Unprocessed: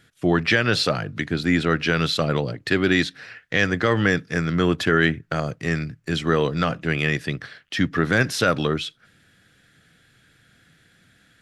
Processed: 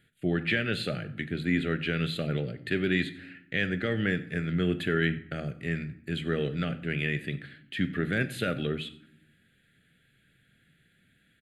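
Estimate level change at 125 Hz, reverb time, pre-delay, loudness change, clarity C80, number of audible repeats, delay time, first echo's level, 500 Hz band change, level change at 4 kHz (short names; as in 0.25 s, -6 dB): -6.5 dB, 0.70 s, 5 ms, -8.0 dB, 17.0 dB, 1, 92 ms, -20.0 dB, -9.0 dB, -10.0 dB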